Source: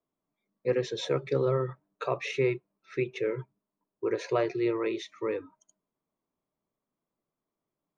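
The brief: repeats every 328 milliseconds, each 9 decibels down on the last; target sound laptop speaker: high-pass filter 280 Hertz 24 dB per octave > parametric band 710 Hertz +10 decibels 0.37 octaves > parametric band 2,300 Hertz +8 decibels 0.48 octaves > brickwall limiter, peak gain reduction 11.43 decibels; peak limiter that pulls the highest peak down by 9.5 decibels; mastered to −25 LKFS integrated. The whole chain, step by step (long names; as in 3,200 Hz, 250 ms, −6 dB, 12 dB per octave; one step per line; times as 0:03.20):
brickwall limiter −24 dBFS
high-pass filter 280 Hz 24 dB per octave
parametric band 710 Hz +10 dB 0.37 octaves
parametric band 2,300 Hz +8 dB 0.48 octaves
repeating echo 328 ms, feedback 35%, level −9 dB
level +14 dB
brickwall limiter −16 dBFS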